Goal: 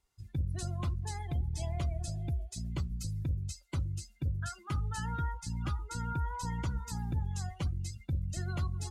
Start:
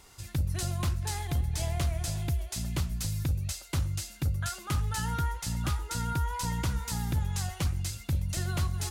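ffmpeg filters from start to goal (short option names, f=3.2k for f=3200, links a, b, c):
-af "afftdn=nr=22:nf=-38,volume=-4dB"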